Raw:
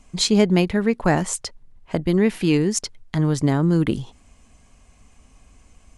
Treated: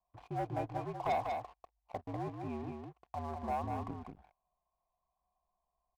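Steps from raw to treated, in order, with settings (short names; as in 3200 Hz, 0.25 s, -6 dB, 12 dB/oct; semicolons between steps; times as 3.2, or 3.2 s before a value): frequency shift -66 Hz; vocal tract filter a; sample leveller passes 3; echo 0.195 s -5 dB; gain -8 dB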